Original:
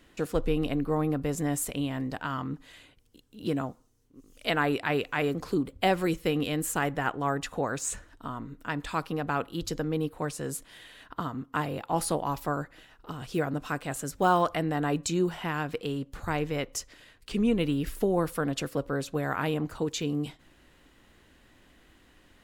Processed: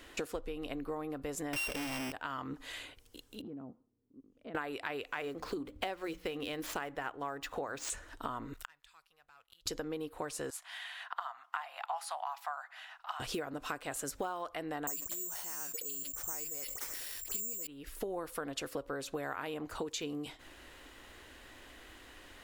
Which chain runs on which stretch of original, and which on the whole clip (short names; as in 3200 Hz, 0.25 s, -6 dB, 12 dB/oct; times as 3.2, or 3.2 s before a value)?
1.53–2.12 sample sorter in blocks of 16 samples + sample leveller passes 5
3.41–4.55 band-pass 200 Hz, Q 2.3 + compressor 5:1, threshold -44 dBFS
5.13–7.9 median filter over 5 samples + notches 60/120/180/240/300 Hz
8.53–9.66 passive tone stack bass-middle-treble 10-0-10 + sample leveller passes 2 + flipped gate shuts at -32 dBFS, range -35 dB
10.5–13.2 elliptic high-pass 710 Hz + high shelf 5800 Hz -11.5 dB
14.87–17.67 dispersion highs, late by 60 ms, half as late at 2000 Hz + careless resampling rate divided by 6×, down none, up zero stuff + sustainer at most 38 dB/s
whole clip: bell 170 Hz -12.5 dB 1.1 oct; compressor 16:1, threshold -42 dBFS; low shelf 120 Hz -5 dB; gain +7.5 dB